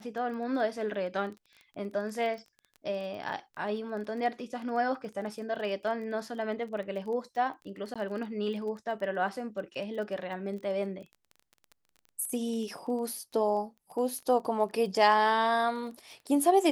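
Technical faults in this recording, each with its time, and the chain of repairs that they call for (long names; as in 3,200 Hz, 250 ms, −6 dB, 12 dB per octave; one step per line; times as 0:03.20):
surface crackle 20 per second −39 dBFS
0:07.94–0:07.96: drop-out 16 ms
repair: click removal
repair the gap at 0:07.94, 16 ms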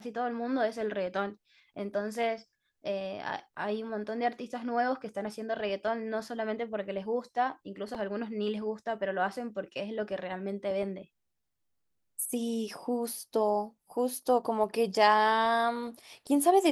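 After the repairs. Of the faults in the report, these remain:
none of them is left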